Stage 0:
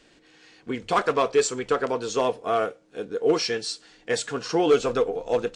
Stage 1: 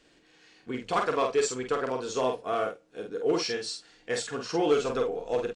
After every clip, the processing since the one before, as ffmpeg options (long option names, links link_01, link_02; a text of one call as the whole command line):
ffmpeg -i in.wav -filter_complex "[0:a]asplit=2[link_01][link_02];[link_02]adelay=47,volume=-4.5dB[link_03];[link_01][link_03]amix=inputs=2:normalize=0,volume=-5.5dB" out.wav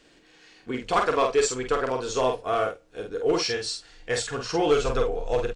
ffmpeg -i in.wav -af "asubboost=boost=11:cutoff=68,volume=4.5dB" out.wav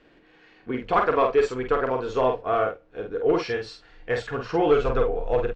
ffmpeg -i in.wav -af "lowpass=2200,volume=2dB" out.wav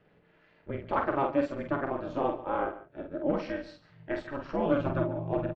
ffmpeg -i in.wav -af "aeval=exprs='val(0)*sin(2*PI*140*n/s)':channel_layout=same,aemphasis=mode=reproduction:type=75kf,aecho=1:1:142:0.158,volume=-4dB" out.wav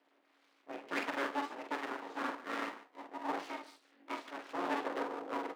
ffmpeg -i in.wav -af "flanger=delay=9.7:depth=9.8:regen=74:speed=0.6:shape=triangular,aeval=exprs='abs(val(0))':channel_layout=same,highpass=frequency=290:width=0.5412,highpass=frequency=290:width=1.3066,volume=1dB" out.wav